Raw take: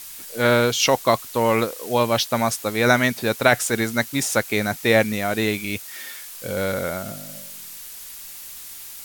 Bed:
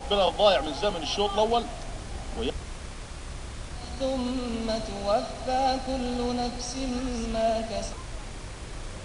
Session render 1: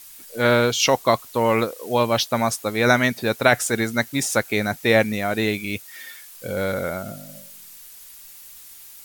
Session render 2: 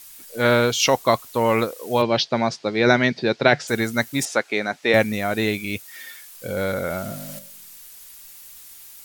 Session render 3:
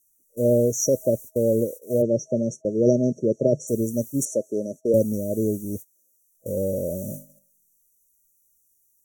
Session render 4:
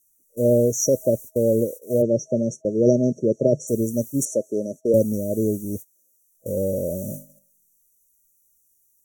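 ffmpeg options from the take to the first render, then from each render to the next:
ffmpeg -i in.wav -af "afftdn=noise_reduction=7:noise_floor=-38" out.wav
ffmpeg -i in.wav -filter_complex "[0:a]asplit=3[link_01][link_02][link_03];[link_01]afade=type=out:start_time=2.01:duration=0.02[link_04];[link_02]highpass=130,equalizer=frequency=150:width_type=q:width=4:gain=10,equalizer=frequency=370:width_type=q:width=4:gain=6,equalizer=frequency=1200:width_type=q:width=4:gain=-5,equalizer=frequency=4700:width_type=q:width=4:gain=5,lowpass=frequency=5100:width=0.5412,lowpass=frequency=5100:width=1.3066,afade=type=in:start_time=2.01:duration=0.02,afade=type=out:start_time=3.67:duration=0.02[link_05];[link_03]afade=type=in:start_time=3.67:duration=0.02[link_06];[link_04][link_05][link_06]amix=inputs=3:normalize=0,asettb=1/sr,asplit=3[link_07][link_08][link_09];[link_07]atrim=end=4.254[link_10];[link_08]atrim=start=4.25:end=4.94,asetpts=PTS-STARTPTS,afade=type=in:duration=0.004:curve=qsin,afade=type=out:start_time=0.686:duration=0.004:curve=qsin,highpass=270,lowpass=5000[link_11];[link_09]atrim=start=4.936[link_12];[link_10][link_11]acrossfade=duration=0.004:curve1=hsin:curve2=qsin[link_13];[link_13][link_12]acrossfade=duration=0.004:curve1=qsin:curve2=hsin,asettb=1/sr,asplit=3[link_14][link_15][link_16];[link_14]atrim=end=6.904[link_17];[link_15]atrim=start=6.9:end=7.39,asetpts=PTS-STARTPTS,afade=type=in:duration=0.004:curve=qsin,afade=type=out:start_time=0.486:duration=0.004:curve=qsin,aeval=exprs='val(0)+0.5*0.0178*sgn(val(0))':channel_layout=same[link_18];[link_16]atrim=start=7.386[link_19];[link_17][link_18]acrossfade=duration=0.004:curve1=hsin:curve2=qsin[link_20];[link_20][link_19]acrossfade=duration=0.004:curve1=qsin:curve2=hsin" out.wav
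ffmpeg -i in.wav -af "agate=range=-22dB:threshold=-32dB:ratio=16:detection=peak,afftfilt=real='re*(1-between(b*sr/4096,640,5600))':imag='im*(1-between(b*sr/4096,640,5600))':win_size=4096:overlap=0.75" out.wav
ffmpeg -i in.wav -af "volume=1.5dB" out.wav

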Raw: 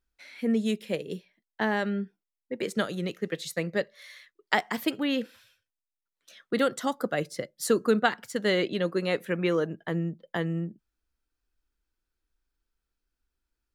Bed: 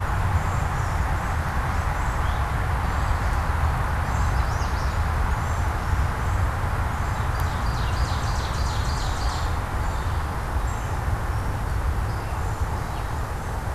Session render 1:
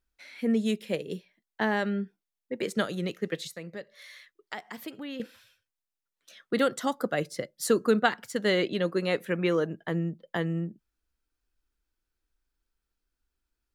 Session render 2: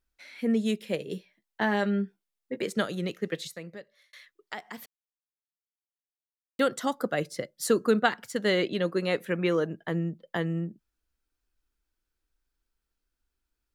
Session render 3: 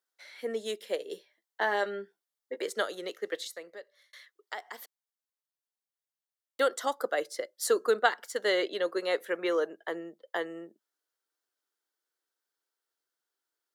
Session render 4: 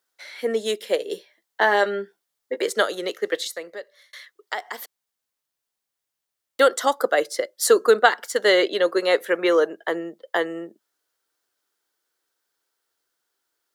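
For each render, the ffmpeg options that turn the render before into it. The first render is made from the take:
ffmpeg -i in.wav -filter_complex "[0:a]asettb=1/sr,asplit=3[link_01][link_02][link_03];[link_01]atrim=end=3.474[link_04];[link_02]atrim=start=3.47:end=5.2,asetpts=PTS-STARTPTS,afade=type=in:duration=0.004:curve=qsin,afade=type=out:start_time=1.726:duration=0.004:curve=qsin,acompressor=threshold=-44dB:ratio=2:attack=3.2:release=140:knee=1:detection=peak[link_05];[link_03]atrim=start=5.196[link_06];[link_04][link_05]acrossfade=duration=0.004:curve1=hsin:curve2=qsin[link_07];[link_07][link_06]acrossfade=duration=0.004:curve1=qsin:curve2=hsin" out.wav
ffmpeg -i in.wav -filter_complex "[0:a]asettb=1/sr,asplit=3[link_01][link_02][link_03];[link_01]atrim=end=0.994[link_04];[link_02]atrim=start=0.99:end=2.58,asetpts=PTS-STARTPTS,afade=type=in:duration=0.004:curve=qsin,afade=type=out:start_time=1.586:duration=0.004:curve=qsin,asplit=2[link_05][link_06];[link_06]adelay=15,volume=-8dB[link_07];[link_05][link_07]amix=inputs=2:normalize=0,atrim=end_sample=70119[link_08];[link_03]atrim=start=2.576[link_09];[link_04][link_08]acrossfade=duration=0.004:curve1=hsin:curve2=qsin[link_10];[link_10][link_09]acrossfade=duration=0.004:curve1=qsin:curve2=hsin,asplit=4[link_11][link_12][link_13][link_14];[link_11]atrim=end=4.13,asetpts=PTS-STARTPTS,afade=type=out:start_time=3.6:duration=0.53[link_15];[link_12]atrim=start=4.13:end=4.86,asetpts=PTS-STARTPTS,afade=type=in:duration=0.004:curve=hsin,afade=type=out:start_time=0.726:duration=0.004:curve=hsin[link_16];[link_13]atrim=start=4.86:end=6.59,asetpts=PTS-STARTPTS,volume=0[link_17];[link_14]atrim=start=6.59,asetpts=PTS-STARTPTS,afade=type=in:duration=0.004:curve=hsin[link_18];[link_15][link_16][link_17][link_18]concat=n=4:v=0:a=1" out.wav
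ffmpeg -i in.wav -af "highpass=frequency=390:width=0.5412,highpass=frequency=390:width=1.3066,equalizer=frequency=2500:width=6.6:gain=-10.5" out.wav
ffmpeg -i in.wav -af "volume=10dB,alimiter=limit=-1dB:level=0:latency=1" out.wav

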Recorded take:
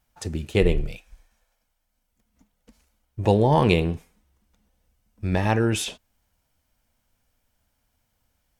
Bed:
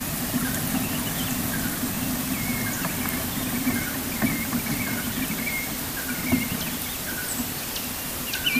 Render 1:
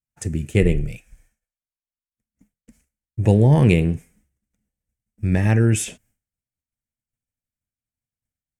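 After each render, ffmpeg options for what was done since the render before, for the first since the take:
ffmpeg -i in.wav -af "equalizer=frequency=125:width_type=o:width=1:gain=9,equalizer=frequency=250:width_type=o:width=1:gain=3,equalizer=frequency=1000:width_type=o:width=1:gain=-10,equalizer=frequency=2000:width_type=o:width=1:gain=7,equalizer=frequency=4000:width_type=o:width=1:gain=-11,equalizer=frequency=8000:width_type=o:width=1:gain=9,agate=range=-33dB:threshold=-53dB:ratio=3:detection=peak" out.wav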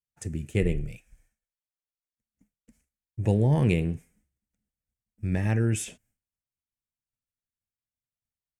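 ffmpeg -i in.wav -af "volume=-8dB" out.wav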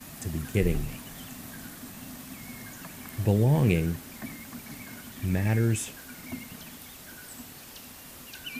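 ffmpeg -i in.wav -i bed.wav -filter_complex "[1:a]volume=-15.5dB[link_01];[0:a][link_01]amix=inputs=2:normalize=0" out.wav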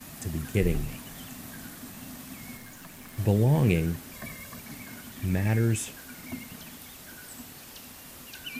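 ffmpeg -i in.wav -filter_complex "[0:a]asettb=1/sr,asplit=3[link_01][link_02][link_03];[link_01]atrim=end=2.574[link_04];[link_02]atrim=start=2.57:end=3.18,asetpts=PTS-STARTPTS,afade=type=in:duration=0.004:curve=qsin,afade=type=out:start_time=0.606:duration=0.004:curve=qsin,aeval=exprs='(tanh(79.4*val(0)+0.55)-tanh(0.55))/79.4':channel_layout=same[link_05];[link_03]atrim=start=3.176[link_06];[link_04][link_05]acrossfade=duration=0.004:curve1=hsin:curve2=qsin[link_07];[link_07][link_06]acrossfade=duration=0.004:curve1=qsin:curve2=hsin,asettb=1/sr,asplit=3[link_08][link_09][link_10];[link_08]atrim=end=4.134[link_11];[link_09]atrim=start=4.13:end=4.6,asetpts=PTS-STARTPTS,afade=type=in:duration=0.004:curve=qsin,afade=type=out:start_time=0.466:duration=0.004:curve=qsin,aecho=1:1:1.8:0.62,atrim=end_sample=20727[link_12];[link_10]atrim=start=4.596[link_13];[link_11][link_12]acrossfade=duration=0.004:curve1=hsin:curve2=qsin[link_14];[link_14][link_13]acrossfade=duration=0.004:curve1=qsin:curve2=hsin" out.wav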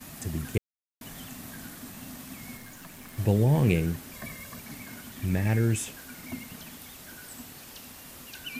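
ffmpeg -i in.wav -filter_complex "[0:a]asplit=3[link_01][link_02][link_03];[link_01]atrim=end=0.58,asetpts=PTS-STARTPTS,afade=type=out:start_time=0.576:duration=0.004:curve=hsin[link_04];[link_02]atrim=start=0.58:end=1.01,asetpts=PTS-STARTPTS,volume=0[link_05];[link_03]atrim=start=1.01,asetpts=PTS-STARTPTS,afade=type=in:duration=0.004:curve=hsin[link_06];[link_04][link_05][link_06]concat=n=3:v=0:a=1" out.wav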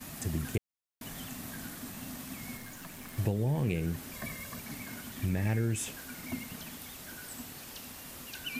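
ffmpeg -i in.wav -af "acompressor=threshold=-26dB:ratio=10" out.wav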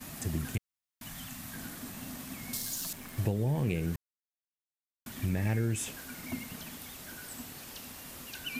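ffmpeg -i in.wav -filter_complex "[0:a]asettb=1/sr,asplit=3[link_01][link_02][link_03];[link_01]atrim=end=0.544[link_04];[link_02]atrim=start=0.54:end=1.54,asetpts=PTS-STARTPTS,afade=type=in:duration=0.004:curve=qsin,afade=type=out:start_time=0.996:duration=0.004:curve=qsin,equalizer=frequency=420:width=1.5:gain=-12.5[link_05];[link_03]atrim=start=1.536[link_06];[link_04][link_05]acrossfade=duration=0.004:curve1=hsin:curve2=qsin[link_07];[link_07][link_06]acrossfade=duration=0.004:curve1=qsin:curve2=hsin,asettb=1/sr,asplit=3[link_08][link_09][link_10];[link_08]atrim=end=2.534[link_11];[link_09]atrim=start=2.53:end=2.93,asetpts=PTS-STARTPTS,afade=type=in:duration=0.004:curve=qsin,afade=type=out:start_time=0.396:duration=0.004:curve=qsin,highshelf=frequency=3100:width_type=q:width=1.5:gain=12.5[link_12];[link_10]atrim=start=2.926[link_13];[link_11][link_12]acrossfade=duration=0.004:curve1=hsin:curve2=qsin[link_14];[link_14][link_13]acrossfade=duration=0.004:curve1=qsin:curve2=hsin,asplit=3[link_15][link_16][link_17];[link_15]atrim=end=3.96,asetpts=PTS-STARTPTS,afade=type=out:start_time=3.956:duration=0.004:curve=hsin[link_18];[link_16]atrim=start=3.96:end=5.06,asetpts=PTS-STARTPTS,volume=0[link_19];[link_17]atrim=start=5.06,asetpts=PTS-STARTPTS,afade=type=in:duration=0.004:curve=hsin[link_20];[link_18][link_19][link_20]concat=n=3:v=0:a=1" out.wav

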